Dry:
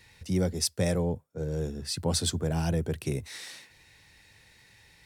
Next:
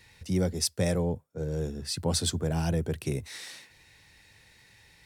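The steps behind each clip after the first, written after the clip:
no processing that can be heard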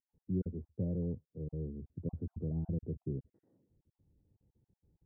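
time-frequency cells dropped at random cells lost 28%
transistor ladder low-pass 450 Hz, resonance 20%
level −2 dB

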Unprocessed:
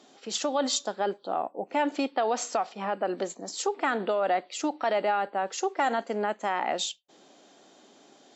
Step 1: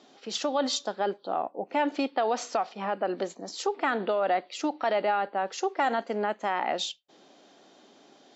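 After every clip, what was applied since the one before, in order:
low-pass filter 6,100 Hz 24 dB per octave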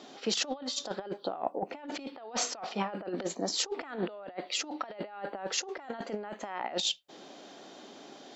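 compressor whose output falls as the input rises −34 dBFS, ratio −0.5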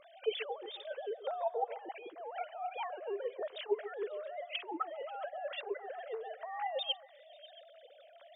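three sine waves on the formant tracks
echo through a band-pass that steps 135 ms, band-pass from 550 Hz, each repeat 0.7 octaves, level −11 dB
level −4 dB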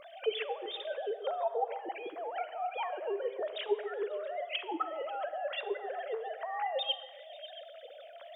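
in parallel at +3 dB: downward compressor, threshold −46 dBFS, peak gain reduction 18 dB
on the sum: comb and all-pass reverb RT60 1.3 s, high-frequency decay 0.7×, pre-delay 0 ms, DRR 12.5 dB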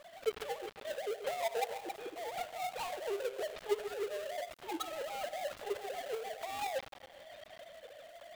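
gap after every zero crossing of 0.23 ms
level −2 dB

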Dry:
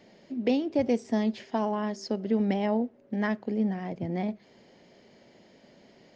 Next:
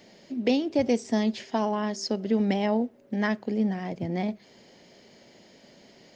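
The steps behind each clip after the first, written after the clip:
high-shelf EQ 3,800 Hz +10 dB
level +1.5 dB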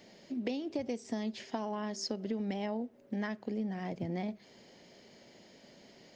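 downward compressor 6 to 1, threshold −29 dBFS, peak gain reduction 10.5 dB
level −3.5 dB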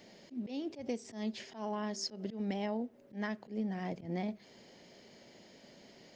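volume swells 115 ms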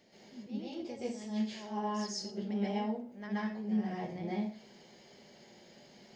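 convolution reverb RT60 0.45 s, pre-delay 117 ms, DRR −8.5 dB
level −8.5 dB

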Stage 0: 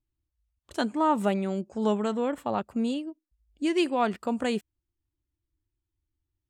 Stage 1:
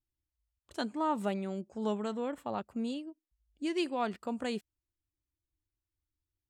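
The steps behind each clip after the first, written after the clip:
dynamic equaliser 4,400 Hz, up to +4 dB, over −50 dBFS, Q 2.3
level −7.5 dB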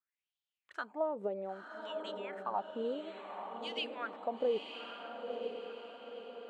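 downward compressor, threshold −34 dBFS, peak gain reduction 8 dB
LFO wah 0.61 Hz 470–3,300 Hz, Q 5.1
feedback delay with all-pass diffusion 958 ms, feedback 50%, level −5.5 dB
level +12 dB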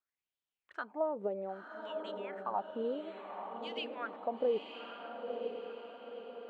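low-pass filter 2,200 Hz 6 dB per octave
level +1 dB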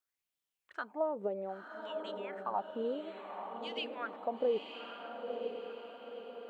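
high-shelf EQ 4,300 Hz +5 dB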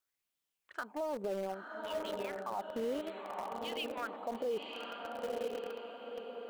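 in parallel at −11.5 dB: bit-depth reduction 6 bits, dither none
on the sum: brickwall limiter −31 dBFS, peak gain reduction 11.5 dB
level +2 dB

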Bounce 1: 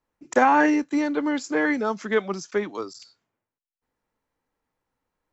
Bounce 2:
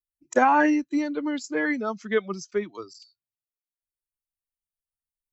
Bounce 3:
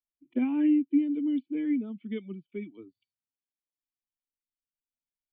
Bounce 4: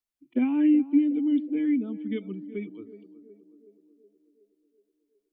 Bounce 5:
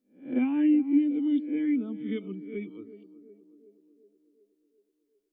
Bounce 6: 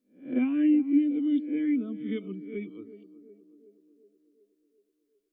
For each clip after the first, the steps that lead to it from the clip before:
spectral dynamics exaggerated over time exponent 1.5
dynamic equaliser 610 Hz, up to −4 dB, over −31 dBFS, Q 1.2; formant resonators in series i; level +4 dB
feedback echo with a band-pass in the loop 370 ms, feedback 65%, band-pass 470 Hz, level −13 dB; level +3 dB
peak hold with a rise ahead of every peak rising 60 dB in 0.38 s; level −2 dB
Butterworth band-reject 870 Hz, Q 4.5

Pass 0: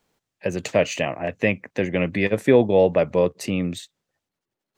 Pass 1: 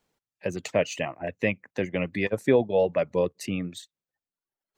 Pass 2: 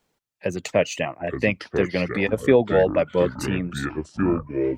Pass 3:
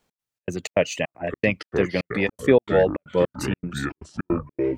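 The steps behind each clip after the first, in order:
reverb reduction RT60 0.97 s; level −4.5 dB
delay with pitch and tempo change per echo 684 ms, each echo −6 semitones, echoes 3, each echo −6 dB; level +4 dB
gate pattern "x.xx.xx.xx" 157 BPM −60 dB

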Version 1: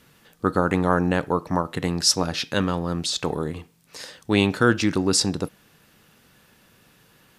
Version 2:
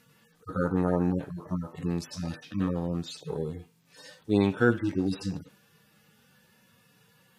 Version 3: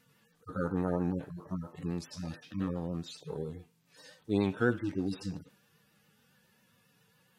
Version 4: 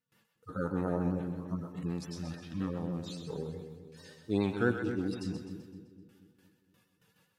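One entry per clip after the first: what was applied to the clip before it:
harmonic-percussive split with one part muted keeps harmonic; low-shelf EQ 63 Hz −6.5 dB; level −2.5 dB
pitch vibrato 7.3 Hz 51 cents; level −5.5 dB
noise gate with hold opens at −56 dBFS; echo with a time of its own for lows and highs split 480 Hz, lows 235 ms, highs 128 ms, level −8 dB; level −1 dB

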